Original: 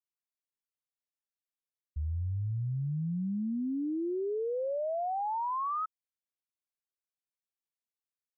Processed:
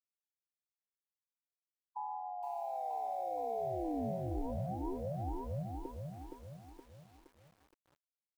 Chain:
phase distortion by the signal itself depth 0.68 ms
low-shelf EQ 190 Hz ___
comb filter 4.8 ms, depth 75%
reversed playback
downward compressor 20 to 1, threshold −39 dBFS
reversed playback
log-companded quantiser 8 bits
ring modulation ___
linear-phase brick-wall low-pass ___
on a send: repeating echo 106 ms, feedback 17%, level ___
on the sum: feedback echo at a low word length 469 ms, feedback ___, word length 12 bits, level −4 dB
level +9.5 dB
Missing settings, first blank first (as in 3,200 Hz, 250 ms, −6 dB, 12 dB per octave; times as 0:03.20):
−11 dB, 920 Hz, 1,000 Hz, −23 dB, 55%